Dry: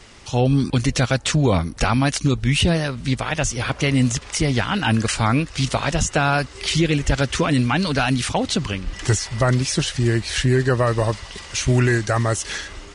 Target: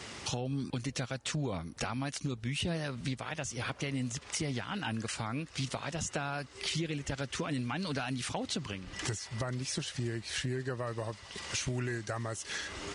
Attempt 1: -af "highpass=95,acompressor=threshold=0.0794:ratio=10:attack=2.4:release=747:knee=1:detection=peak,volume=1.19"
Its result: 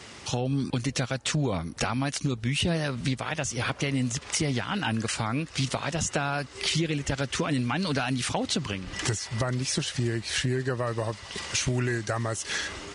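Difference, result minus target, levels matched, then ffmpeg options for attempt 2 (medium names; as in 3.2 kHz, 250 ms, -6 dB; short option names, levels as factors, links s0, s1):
compression: peak gain reduction -7.5 dB
-af "highpass=95,acompressor=threshold=0.0299:ratio=10:attack=2.4:release=747:knee=1:detection=peak,volume=1.19"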